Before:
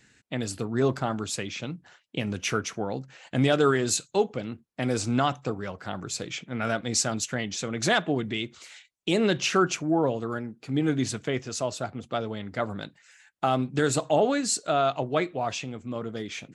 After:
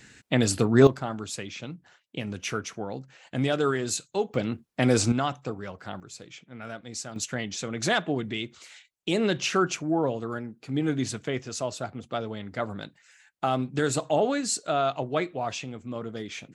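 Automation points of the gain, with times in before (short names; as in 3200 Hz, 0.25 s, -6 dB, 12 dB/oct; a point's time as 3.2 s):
+8 dB
from 0.87 s -3.5 dB
from 4.34 s +5.5 dB
from 5.12 s -3 dB
from 6 s -11 dB
from 7.16 s -1.5 dB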